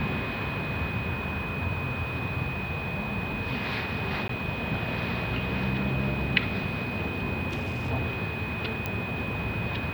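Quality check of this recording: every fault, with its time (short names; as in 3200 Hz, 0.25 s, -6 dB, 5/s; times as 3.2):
tone 2500 Hz -35 dBFS
4.28–4.29 gap 13 ms
7.49–7.91 clipped -27 dBFS
8.86 pop -15 dBFS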